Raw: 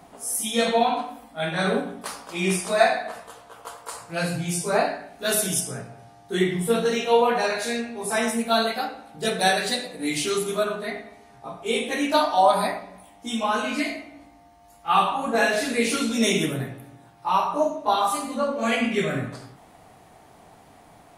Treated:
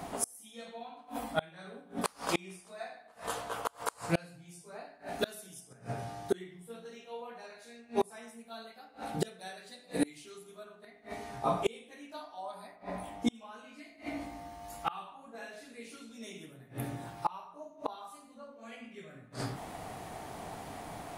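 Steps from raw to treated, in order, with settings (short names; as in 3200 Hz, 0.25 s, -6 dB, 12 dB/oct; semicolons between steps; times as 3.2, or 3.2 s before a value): 12.75–13.34 high shelf 4700 Hz -> 2400 Hz -9.5 dB; flipped gate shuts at -23 dBFS, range -32 dB; gain +7 dB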